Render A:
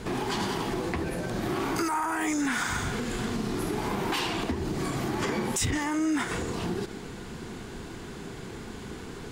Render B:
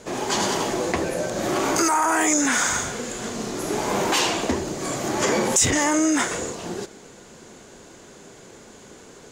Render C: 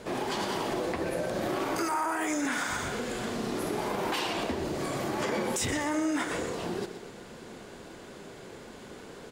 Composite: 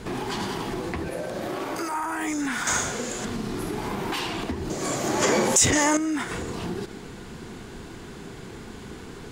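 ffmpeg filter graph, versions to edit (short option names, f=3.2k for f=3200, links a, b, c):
-filter_complex "[1:a]asplit=2[a][b];[0:a]asplit=4[c][d][e][f];[c]atrim=end=1.092[g];[2:a]atrim=start=1.088:end=1.942[h];[d]atrim=start=1.938:end=2.672[i];[a]atrim=start=2.668:end=3.252[j];[e]atrim=start=3.248:end=4.702[k];[b]atrim=start=4.698:end=5.972[l];[f]atrim=start=5.968[m];[g][h]acrossfade=d=0.004:c1=hsin:c2=hsin[n];[n][i]acrossfade=d=0.004:c1=hsin:c2=hsin[o];[o][j]acrossfade=d=0.004:c1=hsin:c2=hsin[p];[p][k]acrossfade=d=0.004:c1=hsin:c2=hsin[q];[q][l]acrossfade=d=0.004:c1=hsin:c2=hsin[r];[r][m]acrossfade=d=0.004:c1=hsin:c2=hsin"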